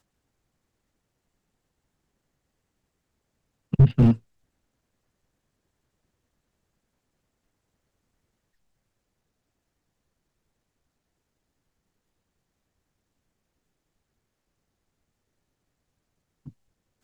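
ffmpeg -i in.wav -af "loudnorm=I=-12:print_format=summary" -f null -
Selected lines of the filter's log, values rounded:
Input Integrated:    -20.6 LUFS
Input True Peak:      -4.5 dBTP
Input LRA:             3.4 LU
Input Threshold:     -34.1 LUFS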